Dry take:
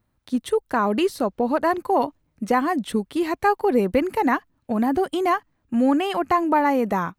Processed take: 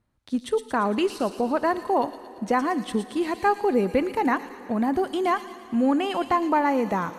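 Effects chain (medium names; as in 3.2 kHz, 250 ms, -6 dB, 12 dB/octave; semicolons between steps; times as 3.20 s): low-pass 9.9 kHz 12 dB/octave; feedback echo behind a high-pass 114 ms, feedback 58%, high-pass 3.8 kHz, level -4 dB; reverberation RT60 3.9 s, pre-delay 3 ms, DRR 15 dB; trim -2.5 dB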